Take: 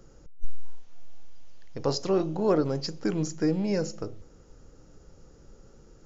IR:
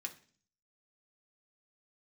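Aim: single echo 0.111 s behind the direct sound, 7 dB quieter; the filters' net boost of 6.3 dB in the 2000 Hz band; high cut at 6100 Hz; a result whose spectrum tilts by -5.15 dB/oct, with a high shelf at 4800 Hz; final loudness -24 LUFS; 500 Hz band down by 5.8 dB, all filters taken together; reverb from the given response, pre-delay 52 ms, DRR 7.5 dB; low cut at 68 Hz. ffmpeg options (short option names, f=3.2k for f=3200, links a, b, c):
-filter_complex "[0:a]highpass=68,lowpass=6.1k,equalizer=f=500:t=o:g=-8,equalizer=f=2k:t=o:g=8,highshelf=f=4.8k:g=6,aecho=1:1:111:0.447,asplit=2[a][b];[1:a]atrim=start_sample=2205,adelay=52[c];[b][c]afir=irnorm=-1:irlink=0,volume=-5.5dB[d];[a][d]amix=inputs=2:normalize=0,volume=5dB"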